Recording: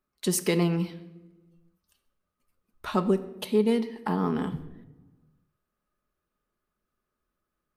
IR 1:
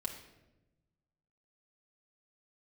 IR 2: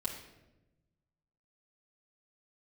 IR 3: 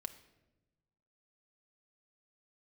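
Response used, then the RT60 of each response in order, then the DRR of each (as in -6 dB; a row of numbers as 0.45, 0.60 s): 3; 1.0, 1.0, 1.0 s; -1.5, -5.5, 7.5 dB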